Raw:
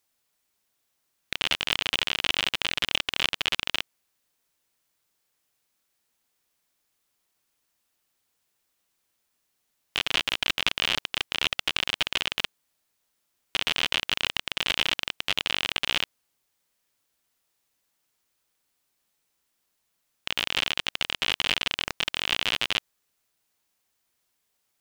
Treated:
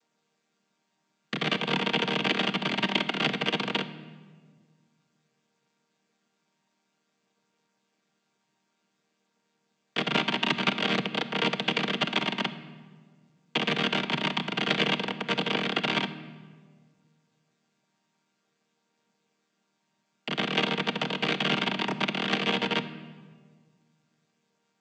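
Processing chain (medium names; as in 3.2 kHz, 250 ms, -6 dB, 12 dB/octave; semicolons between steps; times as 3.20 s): vocoder on a held chord major triad, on D#3; simulated room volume 1700 m³, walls mixed, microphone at 0.54 m; trim +1 dB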